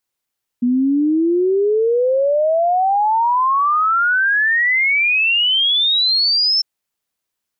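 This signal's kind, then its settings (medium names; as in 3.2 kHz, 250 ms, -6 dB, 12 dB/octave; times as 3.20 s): log sweep 240 Hz -> 5.4 kHz 6.00 s -12.5 dBFS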